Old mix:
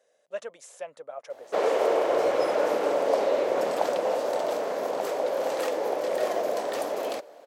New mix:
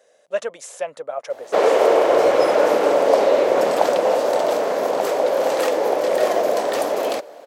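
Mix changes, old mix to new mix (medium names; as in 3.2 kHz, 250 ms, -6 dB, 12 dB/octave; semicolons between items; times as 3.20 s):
speech +11.0 dB; background +8.5 dB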